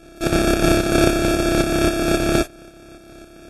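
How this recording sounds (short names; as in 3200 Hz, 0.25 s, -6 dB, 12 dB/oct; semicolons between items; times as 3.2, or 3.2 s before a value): a buzz of ramps at a fixed pitch in blocks of 128 samples; tremolo saw up 3.7 Hz, depth 55%; aliases and images of a low sample rate 1000 Hz, jitter 0%; Vorbis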